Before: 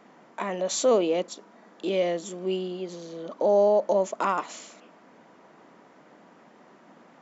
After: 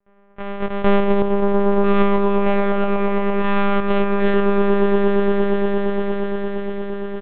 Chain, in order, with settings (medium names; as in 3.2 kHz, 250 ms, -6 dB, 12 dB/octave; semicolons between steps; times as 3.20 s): sorted samples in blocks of 128 samples; level-controlled noise filter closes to 1.9 kHz, open at -18.5 dBFS; gate with hold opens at -46 dBFS; high-pass 150 Hz; comb 2.8 ms, depth 50%; level rider gain up to 11.5 dB; distance through air 70 m; on a send: echo with a slow build-up 116 ms, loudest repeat 8, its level -10 dB; on the sum: monotone LPC vocoder at 8 kHz 200 Hz; trim -1 dB